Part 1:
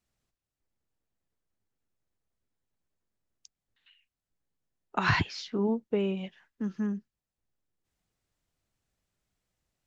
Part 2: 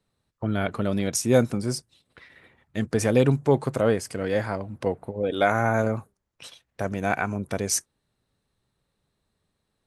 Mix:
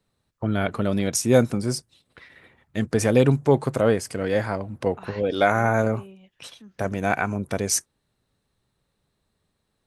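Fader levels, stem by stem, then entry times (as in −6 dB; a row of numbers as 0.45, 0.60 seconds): −14.5, +2.0 decibels; 0.00, 0.00 seconds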